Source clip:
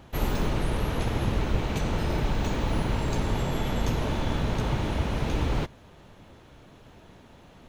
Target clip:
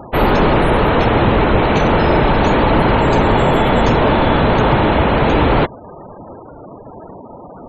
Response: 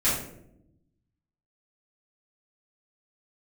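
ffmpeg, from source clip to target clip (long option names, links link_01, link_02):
-filter_complex "[0:a]acontrast=89,asplit=2[link_01][link_02];[link_02]highpass=frequency=720:poles=1,volume=18dB,asoftclip=type=tanh:threshold=-6dB[link_03];[link_01][link_03]amix=inputs=2:normalize=0,lowpass=frequency=1000:poles=1,volume=-6dB,afftfilt=real='re*gte(hypot(re,im),0.02)':imag='im*gte(hypot(re,im),0.02)':win_size=1024:overlap=0.75,volume=6.5dB"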